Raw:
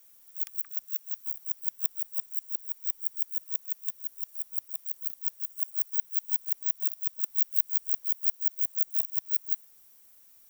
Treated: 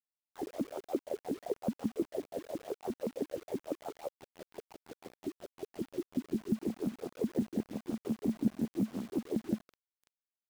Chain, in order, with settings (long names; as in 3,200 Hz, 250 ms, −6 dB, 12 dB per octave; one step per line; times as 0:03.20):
sample-and-hold swept by an LFO 29×, swing 60% 0.97 Hz
dynamic equaliser 970 Hz, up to −4 dB, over −44 dBFS, Q 2
gain on a spectral selection 0:04.12–0:06.51, 420–2,900 Hz −14 dB
envelope filter 220–1,500 Hz, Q 10, down, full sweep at −25.5 dBFS
bit-depth reduction 10 bits, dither none
level +8 dB